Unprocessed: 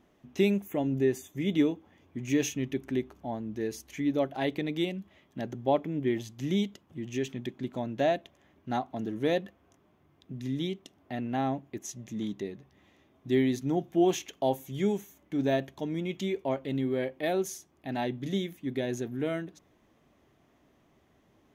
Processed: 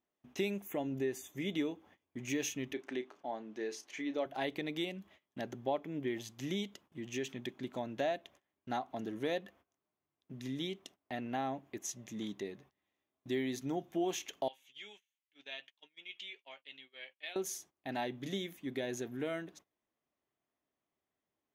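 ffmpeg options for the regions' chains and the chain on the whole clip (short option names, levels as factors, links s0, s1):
-filter_complex "[0:a]asettb=1/sr,asplit=3[s0][s1][s2];[s0]atrim=end=2.734[s3];[s1]atrim=start=2.73:end=4.26,asetpts=PTS-STARTPTS,afade=t=in:d=0.004:c=qsin,afade=t=out:st=1.526:d=0.004:c=qsin,highpass=300,lowpass=6200,asplit=2[s4][s5];[s5]adelay=32,volume=0.224[s6];[s4][s6]amix=inputs=2:normalize=0,atrim=end_sample=67473[s7];[s2]atrim=start=4.256[s8];[s3][s7]acrossfade=d=0.004:c1=hsin:c2=qsin[s9];[s9][s8]acrossfade=d=0.004:c1=qsin:c2=hsin,asettb=1/sr,asplit=3[s10][s11][s12];[s10]atrim=end=14.484[s13];[s11]atrim=start=14.48:end=17.36,asetpts=PTS-STARTPTS,afade=t=in:d=0.004:c=qsin,afade=t=out:st=2.876:d=0.004:c=qsin,bandpass=f=2900:t=q:w=3,asplit=2[s14][s15];[s15]adelay=14,volume=0.266[s16];[s14][s16]amix=inputs=2:normalize=0,atrim=end_sample=127008[s17];[s12]atrim=start=17.356[s18];[s13][s17]acrossfade=d=0.004:c1=hsin:c2=qsin[s19];[s19][s18]acrossfade=d=0.004:c1=qsin:c2=hsin,agate=range=0.0891:threshold=0.002:ratio=16:detection=peak,lowshelf=f=300:g=-11,acompressor=threshold=0.0178:ratio=2"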